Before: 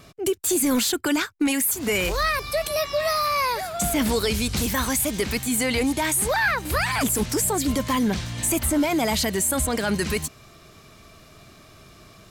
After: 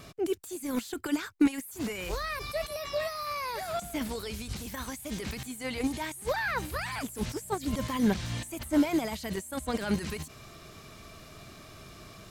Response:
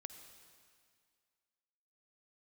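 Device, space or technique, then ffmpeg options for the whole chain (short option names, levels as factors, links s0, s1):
de-esser from a sidechain: -filter_complex "[0:a]asplit=2[s0][s1];[s1]highpass=4300,apad=whole_len=542618[s2];[s0][s2]sidechaincompress=threshold=0.00891:ratio=16:attack=0.71:release=30"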